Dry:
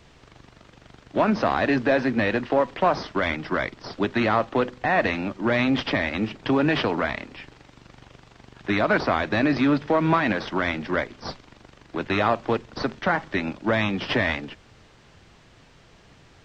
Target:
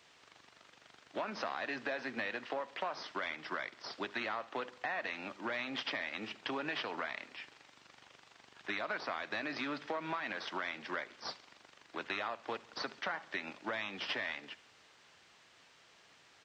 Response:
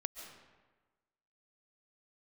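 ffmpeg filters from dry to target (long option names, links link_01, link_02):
-af "highpass=frequency=1200:poles=1,acompressor=threshold=-30dB:ratio=6,aecho=1:1:71|142|213|284:0.0841|0.048|0.0273|0.0156,volume=-4.5dB"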